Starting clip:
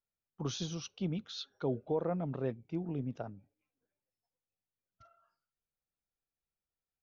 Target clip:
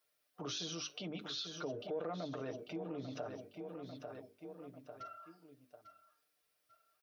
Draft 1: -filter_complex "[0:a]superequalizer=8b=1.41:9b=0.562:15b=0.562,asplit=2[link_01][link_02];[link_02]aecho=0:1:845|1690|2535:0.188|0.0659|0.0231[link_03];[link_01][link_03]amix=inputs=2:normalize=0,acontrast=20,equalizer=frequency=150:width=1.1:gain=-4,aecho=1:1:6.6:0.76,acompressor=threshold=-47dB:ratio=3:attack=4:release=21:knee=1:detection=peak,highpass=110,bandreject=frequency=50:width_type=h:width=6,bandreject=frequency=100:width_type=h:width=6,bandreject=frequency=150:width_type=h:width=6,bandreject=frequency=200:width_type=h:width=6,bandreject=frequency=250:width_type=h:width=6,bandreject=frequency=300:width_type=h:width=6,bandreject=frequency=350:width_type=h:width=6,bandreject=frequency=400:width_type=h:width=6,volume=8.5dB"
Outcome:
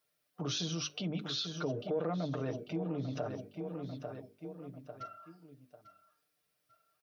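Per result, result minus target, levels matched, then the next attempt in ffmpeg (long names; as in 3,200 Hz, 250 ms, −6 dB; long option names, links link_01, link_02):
125 Hz band +5.5 dB; downward compressor: peak gain reduction −4 dB
-filter_complex "[0:a]superequalizer=8b=1.41:9b=0.562:15b=0.562,asplit=2[link_01][link_02];[link_02]aecho=0:1:845|1690|2535:0.188|0.0659|0.0231[link_03];[link_01][link_03]amix=inputs=2:normalize=0,acontrast=20,equalizer=frequency=150:width=1.1:gain=-15,aecho=1:1:6.6:0.76,acompressor=threshold=-47dB:ratio=3:attack=4:release=21:knee=1:detection=peak,highpass=110,bandreject=frequency=50:width_type=h:width=6,bandreject=frequency=100:width_type=h:width=6,bandreject=frequency=150:width_type=h:width=6,bandreject=frequency=200:width_type=h:width=6,bandreject=frequency=250:width_type=h:width=6,bandreject=frequency=300:width_type=h:width=6,bandreject=frequency=350:width_type=h:width=6,bandreject=frequency=400:width_type=h:width=6,volume=8.5dB"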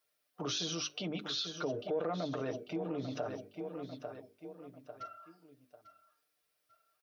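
downward compressor: peak gain reduction −5.5 dB
-filter_complex "[0:a]superequalizer=8b=1.41:9b=0.562:15b=0.562,asplit=2[link_01][link_02];[link_02]aecho=0:1:845|1690|2535:0.188|0.0659|0.0231[link_03];[link_01][link_03]amix=inputs=2:normalize=0,acontrast=20,equalizer=frequency=150:width=1.1:gain=-15,aecho=1:1:6.6:0.76,acompressor=threshold=-55dB:ratio=3:attack=4:release=21:knee=1:detection=peak,highpass=110,bandreject=frequency=50:width_type=h:width=6,bandreject=frequency=100:width_type=h:width=6,bandreject=frequency=150:width_type=h:width=6,bandreject=frequency=200:width_type=h:width=6,bandreject=frequency=250:width_type=h:width=6,bandreject=frequency=300:width_type=h:width=6,bandreject=frequency=350:width_type=h:width=6,bandreject=frequency=400:width_type=h:width=6,volume=8.5dB"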